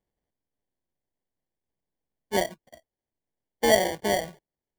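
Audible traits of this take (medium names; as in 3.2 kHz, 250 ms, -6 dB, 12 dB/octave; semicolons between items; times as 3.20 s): aliases and images of a low sample rate 1.3 kHz, jitter 0%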